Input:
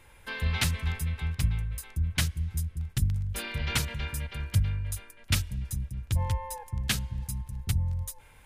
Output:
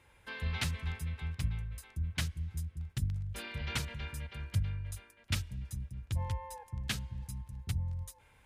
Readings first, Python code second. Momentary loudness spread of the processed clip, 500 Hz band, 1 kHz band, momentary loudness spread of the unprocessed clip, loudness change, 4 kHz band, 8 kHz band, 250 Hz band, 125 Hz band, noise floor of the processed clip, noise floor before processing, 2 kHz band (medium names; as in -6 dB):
8 LU, -6.5 dB, -6.5 dB, 7 LU, -7.0 dB, -7.5 dB, -10.0 dB, -6.5 dB, -7.0 dB, -64 dBFS, -55 dBFS, -7.0 dB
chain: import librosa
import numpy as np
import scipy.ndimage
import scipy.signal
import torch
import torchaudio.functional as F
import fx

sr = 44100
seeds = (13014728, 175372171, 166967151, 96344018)

y = scipy.signal.sosfilt(scipy.signal.butter(2, 43.0, 'highpass', fs=sr, output='sos'), x)
y = fx.high_shelf(y, sr, hz=9700.0, db=-9.0)
y = y * librosa.db_to_amplitude(-6.5)